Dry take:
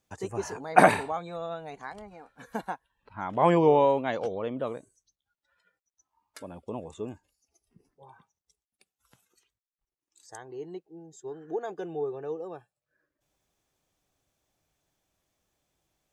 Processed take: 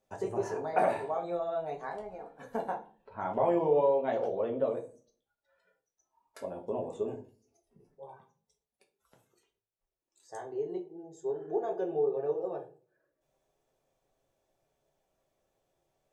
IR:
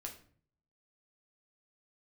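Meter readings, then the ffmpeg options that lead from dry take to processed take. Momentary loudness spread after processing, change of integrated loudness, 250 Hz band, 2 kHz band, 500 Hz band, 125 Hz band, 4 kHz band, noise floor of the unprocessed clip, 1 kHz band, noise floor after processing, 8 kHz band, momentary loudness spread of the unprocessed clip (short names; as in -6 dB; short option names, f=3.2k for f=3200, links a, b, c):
19 LU, -5.0 dB, -6.0 dB, -12.5 dB, -1.5 dB, -9.5 dB, under -10 dB, under -85 dBFS, -7.0 dB, under -85 dBFS, under -10 dB, 23 LU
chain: -filter_complex "[0:a]equalizer=f=540:w=0.78:g=12.5,acompressor=threshold=-23dB:ratio=2.5[a];[1:a]atrim=start_sample=2205,asetrate=61740,aresample=44100[b];[a][b]afir=irnorm=-1:irlink=0"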